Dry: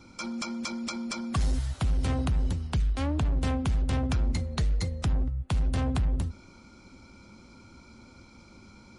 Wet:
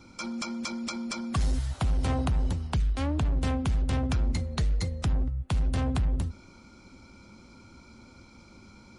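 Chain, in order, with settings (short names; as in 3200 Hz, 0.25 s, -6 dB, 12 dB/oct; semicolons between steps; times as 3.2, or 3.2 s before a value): 1.71–2.74 bell 810 Hz +4.5 dB 1.2 oct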